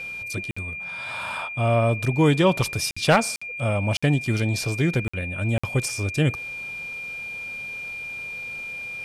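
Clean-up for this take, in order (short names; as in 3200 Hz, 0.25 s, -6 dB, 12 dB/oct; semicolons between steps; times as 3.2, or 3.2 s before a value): clip repair -8 dBFS; notch 2400 Hz, Q 30; interpolate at 0.51/2.91/3.36/3.97/5.08/5.58, 55 ms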